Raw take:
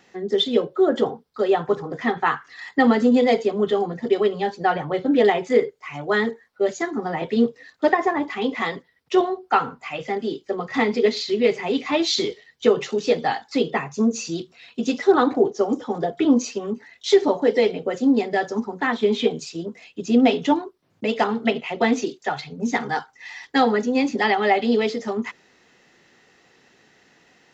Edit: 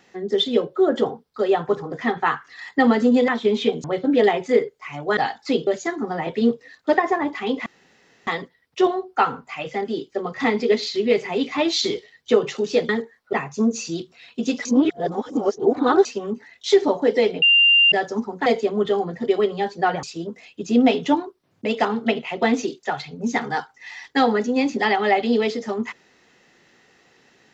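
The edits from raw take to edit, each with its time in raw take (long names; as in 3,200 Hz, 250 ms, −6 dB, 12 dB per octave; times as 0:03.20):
0:03.28–0:04.85: swap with 0:18.86–0:19.42
0:06.18–0:06.62: swap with 0:13.23–0:13.73
0:08.61: splice in room tone 0.61 s
0:15.05–0:16.45: reverse
0:17.82–0:18.32: beep over 2,790 Hz −11 dBFS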